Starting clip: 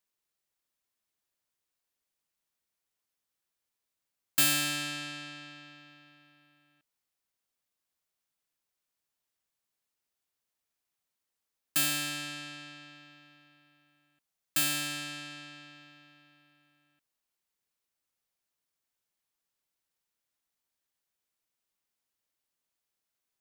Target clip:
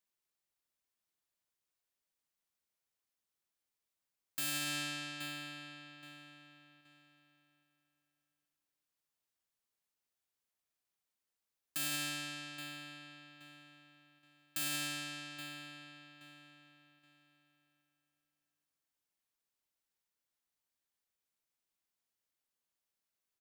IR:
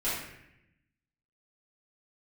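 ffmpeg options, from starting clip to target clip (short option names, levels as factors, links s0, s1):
-filter_complex "[0:a]asplit=2[s0][s1];[s1]adelay=824,lowpass=f=4700:p=1,volume=0.158,asplit=2[s2][s3];[s3]adelay=824,lowpass=f=4700:p=1,volume=0.33,asplit=2[s4][s5];[s5]adelay=824,lowpass=f=4700:p=1,volume=0.33[s6];[s0][s2][s4][s6]amix=inputs=4:normalize=0,alimiter=limit=0.0668:level=0:latency=1,volume=0.631"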